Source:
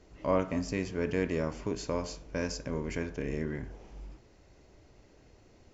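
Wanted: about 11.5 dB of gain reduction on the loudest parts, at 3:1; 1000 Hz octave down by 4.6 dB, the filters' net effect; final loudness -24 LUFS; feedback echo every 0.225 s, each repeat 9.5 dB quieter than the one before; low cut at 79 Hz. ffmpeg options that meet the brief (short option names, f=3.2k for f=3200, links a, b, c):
-af "highpass=79,equalizer=f=1k:t=o:g=-5.5,acompressor=threshold=-40dB:ratio=3,aecho=1:1:225|450|675|900:0.335|0.111|0.0365|0.012,volume=19dB"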